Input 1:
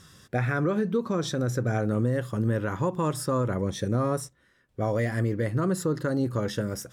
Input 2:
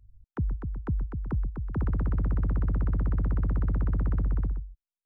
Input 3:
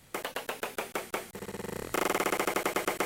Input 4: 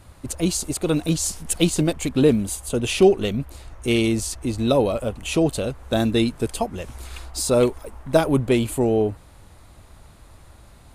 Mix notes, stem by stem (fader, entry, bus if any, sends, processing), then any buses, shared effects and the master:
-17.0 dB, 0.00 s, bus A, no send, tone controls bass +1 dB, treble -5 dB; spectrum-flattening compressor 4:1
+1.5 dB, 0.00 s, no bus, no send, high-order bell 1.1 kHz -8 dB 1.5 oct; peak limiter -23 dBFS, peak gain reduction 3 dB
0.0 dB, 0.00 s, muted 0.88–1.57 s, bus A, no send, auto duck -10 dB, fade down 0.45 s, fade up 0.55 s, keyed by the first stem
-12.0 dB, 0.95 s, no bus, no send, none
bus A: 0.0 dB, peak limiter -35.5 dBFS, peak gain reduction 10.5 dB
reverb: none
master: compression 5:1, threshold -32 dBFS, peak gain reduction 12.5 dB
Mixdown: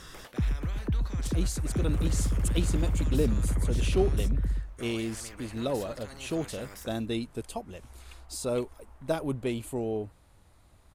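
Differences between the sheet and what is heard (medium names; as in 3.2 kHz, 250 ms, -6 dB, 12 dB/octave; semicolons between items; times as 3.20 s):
stem 1 -17.0 dB -> -10.0 dB; stem 3 0.0 dB -> -7.0 dB; master: missing compression 5:1, threshold -32 dBFS, peak gain reduction 12.5 dB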